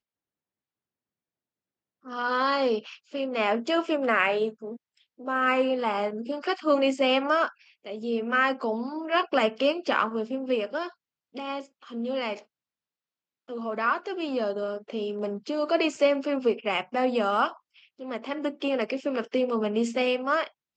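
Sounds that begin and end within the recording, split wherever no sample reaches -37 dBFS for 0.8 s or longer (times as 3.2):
2.06–12.39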